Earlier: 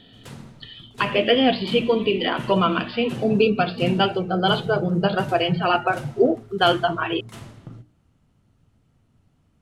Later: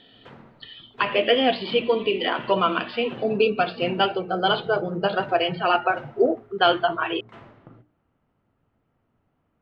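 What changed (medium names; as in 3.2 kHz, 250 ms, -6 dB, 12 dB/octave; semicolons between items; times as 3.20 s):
background: add low-pass 2 kHz 12 dB/octave; master: add tone controls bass -12 dB, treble -5 dB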